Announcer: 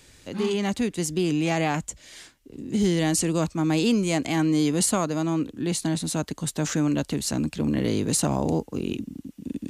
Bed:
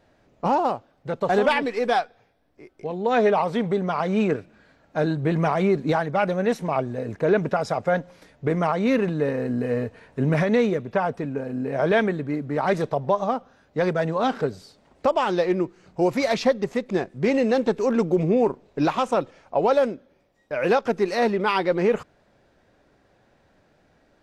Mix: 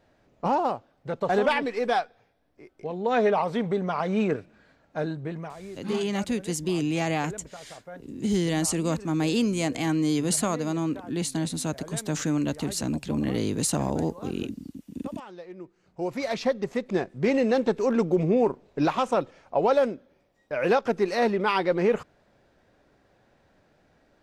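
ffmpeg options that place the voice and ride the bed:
ffmpeg -i stem1.wav -i stem2.wav -filter_complex "[0:a]adelay=5500,volume=-2.5dB[link_01];[1:a]volume=15.5dB,afade=type=out:start_time=4.72:duration=0.83:silence=0.133352,afade=type=in:start_time=15.53:duration=1.42:silence=0.11885[link_02];[link_01][link_02]amix=inputs=2:normalize=0" out.wav

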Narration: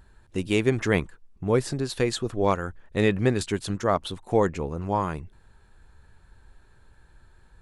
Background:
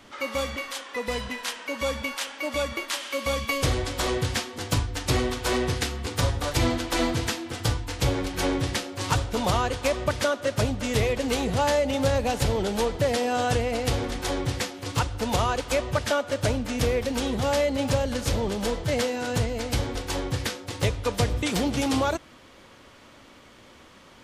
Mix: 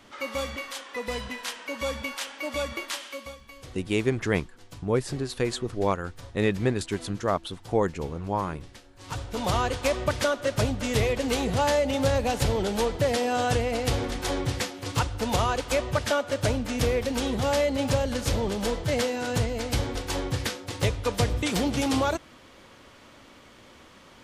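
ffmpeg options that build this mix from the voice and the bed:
ffmpeg -i stem1.wav -i stem2.wav -filter_complex "[0:a]adelay=3400,volume=-2.5dB[link_01];[1:a]volume=18dB,afade=type=out:start_time=2.89:duration=0.48:silence=0.11885,afade=type=in:start_time=8.98:duration=0.64:silence=0.0944061[link_02];[link_01][link_02]amix=inputs=2:normalize=0" out.wav

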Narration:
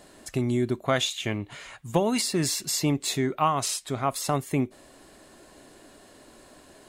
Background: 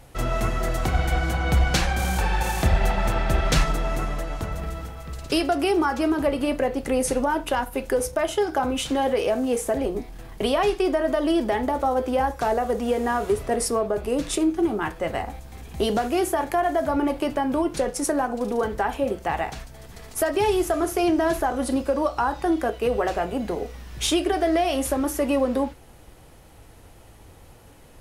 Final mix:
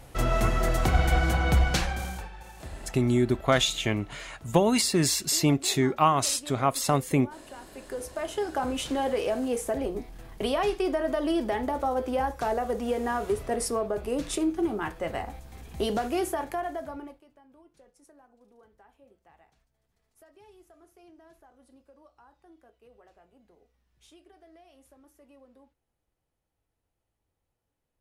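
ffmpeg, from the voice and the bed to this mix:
ffmpeg -i stem1.wav -i stem2.wav -filter_complex "[0:a]adelay=2600,volume=2dB[link_01];[1:a]volume=16.5dB,afade=type=out:start_time=1.35:duration=0.96:silence=0.0841395,afade=type=in:start_time=7.64:duration=1.02:silence=0.149624,afade=type=out:start_time=16.17:duration=1.05:silence=0.0354813[link_02];[link_01][link_02]amix=inputs=2:normalize=0" out.wav

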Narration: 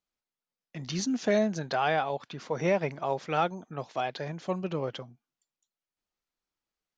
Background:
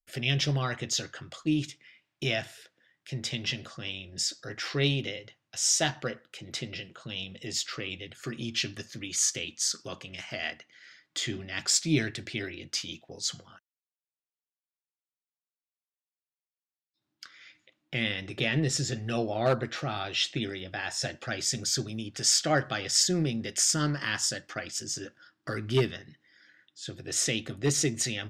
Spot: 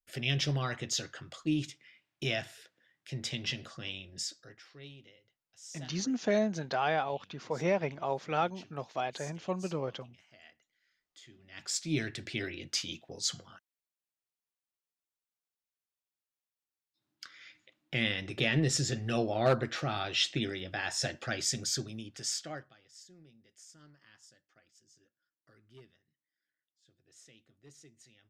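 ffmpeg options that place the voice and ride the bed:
ffmpeg -i stem1.wav -i stem2.wav -filter_complex "[0:a]adelay=5000,volume=-3dB[link_01];[1:a]volume=19dB,afade=type=out:start_time=3.95:duration=0.7:silence=0.1,afade=type=in:start_time=11.38:duration=1.1:silence=0.0749894,afade=type=out:start_time=21.24:duration=1.5:silence=0.0334965[link_02];[link_01][link_02]amix=inputs=2:normalize=0" out.wav

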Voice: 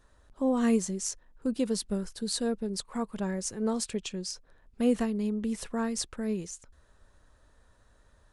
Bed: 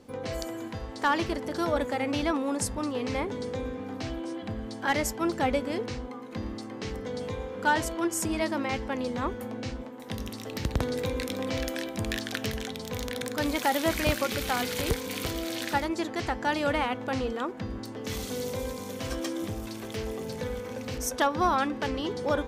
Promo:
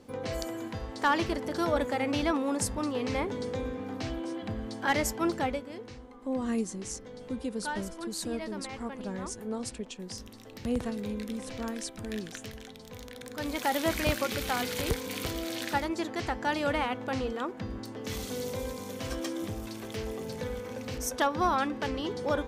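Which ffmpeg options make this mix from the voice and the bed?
ffmpeg -i stem1.wav -i stem2.wav -filter_complex "[0:a]adelay=5850,volume=-5.5dB[link_01];[1:a]volume=8.5dB,afade=type=out:start_time=5.29:duration=0.36:silence=0.298538,afade=type=in:start_time=13.21:duration=0.56:silence=0.354813[link_02];[link_01][link_02]amix=inputs=2:normalize=0" out.wav

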